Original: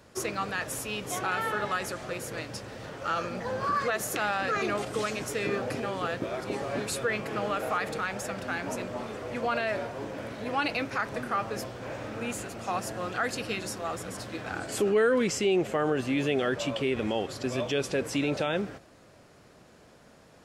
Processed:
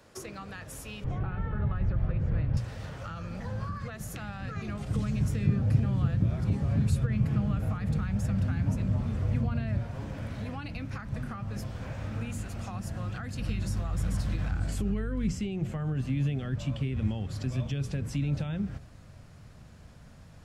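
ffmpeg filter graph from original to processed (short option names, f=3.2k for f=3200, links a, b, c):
-filter_complex "[0:a]asettb=1/sr,asplit=3[a][b][c];[a]atrim=end=1.044[d];[b]atrim=start=1.04:end=2.57,asetpts=PTS-STARTPTS,afade=t=in:d=0.004:c=qsin,afade=t=out:st=1.526:d=0.004:c=qsin,lowpass=3k,aemphasis=mode=reproduction:type=riaa[e];[c]atrim=start=2.566[f];[d][e]acrossfade=d=0.004:c1=hsin:c2=qsin[g];[g][f]acrossfade=d=0.004:c1=qsin:c2=hsin,asettb=1/sr,asplit=3[h][i][j];[h]atrim=end=4.894[k];[i]atrim=start=4.89:end=9.78,asetpts=PTS-STARTPTS,afade=t=in:d=0.004:c=qsin,afade=t=out:st=4.886:d=0.004:c=qsin,highpass=56,lowshelf=f=270:g=11[l];[j]atrim=start=9.776[m];[k][l]acrossfade=d=0.004:c1=hsin:c2=qsin[n];[n][m]acrossfade=d=0.004:c1=qsin:c2=hsin,asettb=1/sr,asplit=3[o][p][q];[o]atrim=end=13.394[r];[p]atrim=start=13.39:end=15.32,asetpts=PTS-STARTPTS,afade=t=in:d=0.004:c=qsin,afade=t=out:st=1.926:d=0.004:c=qsin,acompressor=mode=upward:threshold=-26dB:ratio=2.5:attack=3.2:release=140:knee=2.83:detection=peak,aeval=exprs='val(0)+0.00501*(sin(2*PI*50*n/s)+sin(2*PI*2*50*n/s)/2+sin(2*PI*3*50*n/s)/3+sin(2*PI*4*50*n/s)/4+sin(2*PI*5*50*n/s)/5)':c=same[s];[q]atrim=start=15.316[t];[r][s]acrossfade=d=0.004:c1=hsin:c2=qsin[u];[u][t]acrossfade=d=0.004:c1=qsin:c2=hsin,asubboost=boost=10:cutoff=120,bandreject=f=60:t=h:w=6,bandreject=f=120:t=h:w=6,bandreject=f=180:t=h:w=6,bandreject=f=240:t=h:w=6,bandreject=f=300:t=h:w=6,bandreject=f=360:t=h:w=6,bandreject=f=420:t=h:w=6,acrossover=split=250[v][w];[w]acompressor=threshold=-40dB:ratio=6[x];[v][x]amix=inputs=2:normalize=0,volume=-1.5dB"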